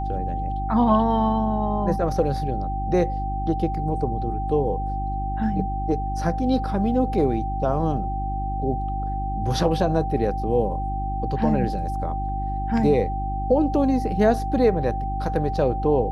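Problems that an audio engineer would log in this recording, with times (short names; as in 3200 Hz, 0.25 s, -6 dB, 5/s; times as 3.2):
hum 50 Hz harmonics 7 -28 dBFS
tone 780 Hz -28 dBFS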